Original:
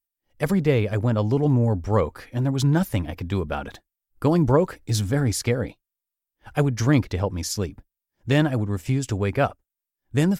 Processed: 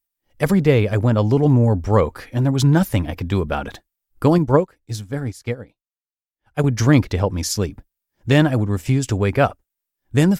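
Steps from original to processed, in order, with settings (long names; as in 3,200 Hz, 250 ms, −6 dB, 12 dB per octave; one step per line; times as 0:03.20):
0:04.38–0:06.64: expander for the loud parts 2.5 to 1, over −29 dBFS
level +5 dB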